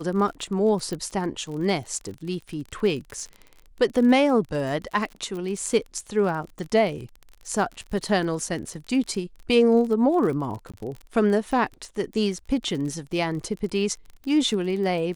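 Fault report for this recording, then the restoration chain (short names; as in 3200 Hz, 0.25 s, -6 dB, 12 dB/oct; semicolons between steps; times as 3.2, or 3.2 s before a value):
crackle 41/s -32 dBFS
0.93 pop -19 dBFS
10.72–10.74 gap 16 ms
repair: de-click; interpolate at 10.72, 16 ms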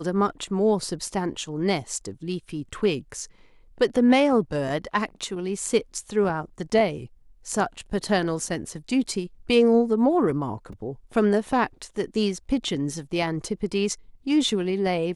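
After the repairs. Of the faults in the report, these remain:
none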